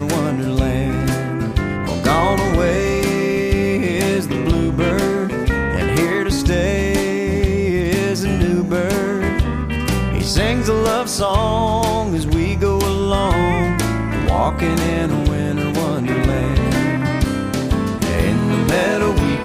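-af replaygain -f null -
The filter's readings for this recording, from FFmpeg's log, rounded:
track_gain = +1.0 dB
track_peak = 0.398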